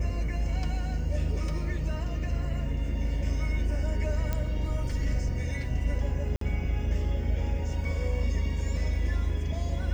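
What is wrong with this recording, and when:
4.33 s: pop -16 dBFS
6.36–6.41 s: dropout 53 ms

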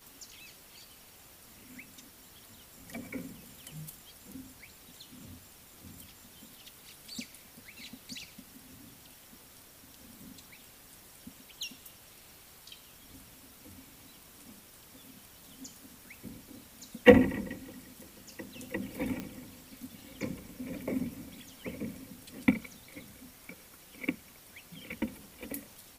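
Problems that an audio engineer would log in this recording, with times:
19.20 s: pop -22 dBFS

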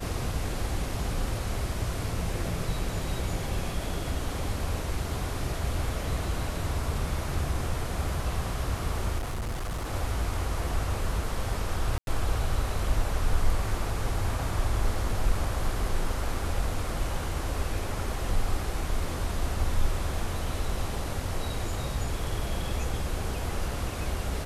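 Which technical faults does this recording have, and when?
9.18–9.93 s: clipped -28.5 dBFS
11.98–12.07 s: dropout 92 ms

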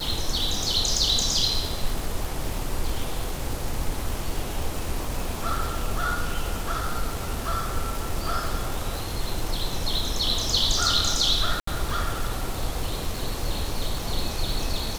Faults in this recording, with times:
crackle 340 per s -29 dBFS
11.60–11.67 s: dropout 74 ms

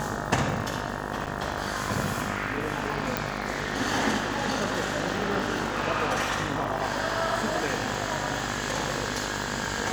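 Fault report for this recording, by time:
buzz 50 Hz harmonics 37 -34 dBFS
crackle 300 per s -36 dBFS
1.26–1.27 s: dropout 7.5 ms
3.17 s: pop

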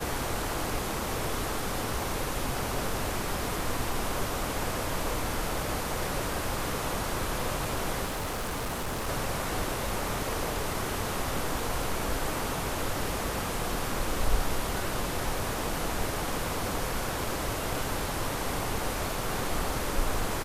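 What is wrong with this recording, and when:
8.05–9.09 s: clipped -29 dBFS

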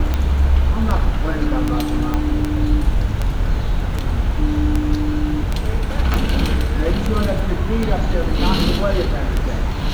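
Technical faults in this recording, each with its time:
tick 78 rpm -7 dBFS
2.14 s: pop -8 dBFS
6.14 s: pop

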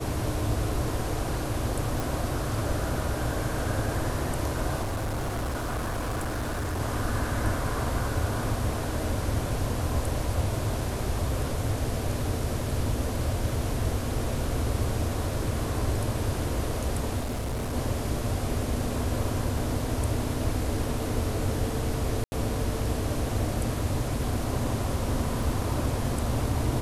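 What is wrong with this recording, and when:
2.00 s: pop
4.82–6.81 s: clipped -26.5 dBFS
17.20–17.74 s: clipped -27 dBFS
22.24–22.32 s: dropout 80 ms
25.43 s: dropout 2.2 ms

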